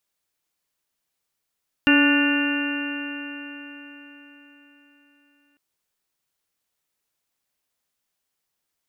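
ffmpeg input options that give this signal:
-f lavfi -i "aevalsrc='0.178*pow(10,-3*t/4.39)*sin(2*PI*285.3*t)+0.0355*pow(10,-3*t/4.39)*sin(2*PI*572.39*t)+0.0282*pow(10,-3*t/4.39)*sin(2*PI*863.04*t)+0.0251*pow(10,-3*t/4.39)*sin(2*PI*1158.99*t)+0.0841*pow(10,-3*t/4.39)*sin(2*PI*1461.93*t)+0.0794*pow(10,-3*t/4.39)*sin(2*PI*1773.46*t)+0.0178*pow(10,-3*t/4.39)*sin(2*PI*2095.13*t)+0.0316*pow(10,-3*t/4.39)*sin(2*PI*2428.39*t)+0.126*pow(10,-3*t/4.39)*sin(2*PI*2774.59*t)':d=3.7:s=44100"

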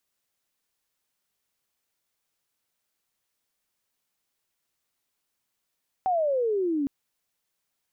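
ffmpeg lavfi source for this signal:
-f lavfi -i "aevalsrc='pow(10,(-21-2.5*t/0.81)/20)*sin(2*PI*770*0.81/log(270/770)*(exp(log(270/770)*t/0.81)-1))':d=0.81:s=44100"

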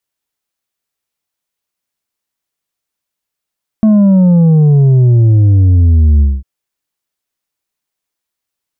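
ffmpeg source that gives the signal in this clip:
-f lavfi -i "aevalsrc='0.562*clip((2.6-t)/0.22,0,1)*tanh(1.78*sin(2*PI*220*2.6/log(65/220)*(exp(log(65/220)*t/2.6)-1)))/tanh(1.78)':d=2.6:s=44100"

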